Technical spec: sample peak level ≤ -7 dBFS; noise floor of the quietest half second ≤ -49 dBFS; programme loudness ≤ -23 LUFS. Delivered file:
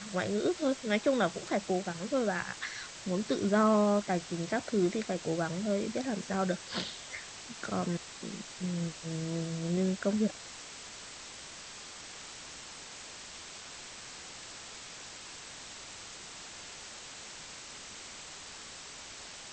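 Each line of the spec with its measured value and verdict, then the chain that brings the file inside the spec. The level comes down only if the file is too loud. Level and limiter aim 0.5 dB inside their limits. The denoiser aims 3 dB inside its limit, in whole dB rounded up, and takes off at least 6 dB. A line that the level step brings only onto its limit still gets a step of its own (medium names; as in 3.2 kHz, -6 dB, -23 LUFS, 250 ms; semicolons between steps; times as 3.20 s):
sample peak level -16.0 dBFS: pass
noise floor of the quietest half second -47 dBFS: fail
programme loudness -35.0 LUFS: pass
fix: noise reduction 6 dB, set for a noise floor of -47 dBFS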